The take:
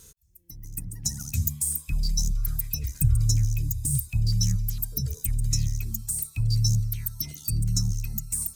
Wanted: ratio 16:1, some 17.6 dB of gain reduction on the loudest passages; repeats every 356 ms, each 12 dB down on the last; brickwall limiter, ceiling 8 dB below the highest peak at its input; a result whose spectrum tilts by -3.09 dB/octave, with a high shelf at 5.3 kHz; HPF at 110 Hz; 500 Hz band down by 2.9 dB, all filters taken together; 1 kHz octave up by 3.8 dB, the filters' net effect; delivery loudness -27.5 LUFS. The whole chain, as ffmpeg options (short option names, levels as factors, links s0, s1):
-af "highpass=110,equalizer=f=500:t=o:g=-5,equalizer=f=1000:t=o:g=6.5,highshelf=f=5300:g=-5,acompressor=threshold=0.0141:ratio=16,alimiter=level_in=2.24:limit=0.0631:level=0:latency=1,volume=0.447,aecho=1:1:356|712|1068:0.251|0.0628|0.0157,volume=5.31"